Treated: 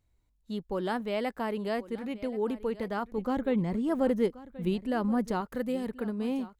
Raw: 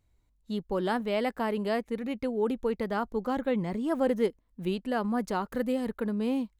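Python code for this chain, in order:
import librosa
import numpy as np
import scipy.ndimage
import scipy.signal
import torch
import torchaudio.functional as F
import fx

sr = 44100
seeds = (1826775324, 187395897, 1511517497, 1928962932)

y = fx.low_shelf(x, sr, hz=260.0, db=7.5, at=(3.18, 5.41))
y = y + 10.0 ** (-17.5 / 20.0) * np.pad(y, (int(1079 * sr / 1000.0), 0))[:len(y)]
y = y * 10.0 ** (-2.5 / 20.0)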